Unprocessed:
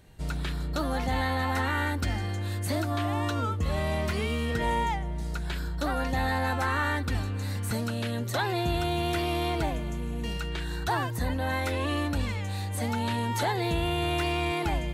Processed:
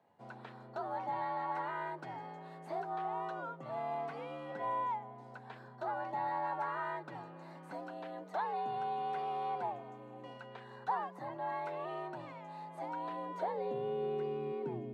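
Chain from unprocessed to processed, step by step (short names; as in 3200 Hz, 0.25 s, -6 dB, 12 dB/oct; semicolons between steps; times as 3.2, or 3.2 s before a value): frequency shift +69 Hz; band-pass sweep 810 Hz -> 340 Hz, 12.95–14.42; gain -3 dB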